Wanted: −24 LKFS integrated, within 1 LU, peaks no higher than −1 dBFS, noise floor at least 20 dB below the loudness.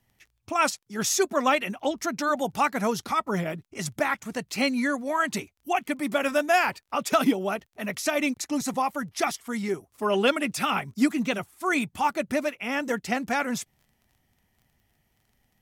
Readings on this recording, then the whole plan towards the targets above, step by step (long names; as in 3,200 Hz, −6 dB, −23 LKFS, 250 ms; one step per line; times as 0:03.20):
crackle rate 18 per second; integrated loudness −26.5 LKFS; sample peak −10.5 dBFS; target loudness −24.0 LKFS
→ click removal
level +2.5 dB